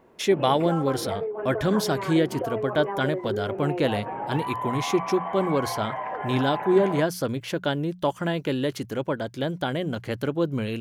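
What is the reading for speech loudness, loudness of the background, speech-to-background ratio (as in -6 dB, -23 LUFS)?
-26.0 LUFS, -32.0 LUFS, 6.0 dB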